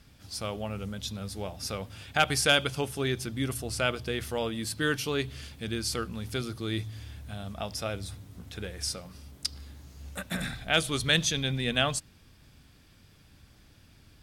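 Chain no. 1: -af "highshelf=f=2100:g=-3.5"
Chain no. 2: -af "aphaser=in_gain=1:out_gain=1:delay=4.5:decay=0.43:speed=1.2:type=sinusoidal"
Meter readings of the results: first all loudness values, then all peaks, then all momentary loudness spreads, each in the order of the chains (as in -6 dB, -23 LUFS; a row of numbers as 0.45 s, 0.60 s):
-32.0 LUFS, -29.0 LUFS; -11.5 dBFS, -6.0 dBFS; 15 LU, 16 LU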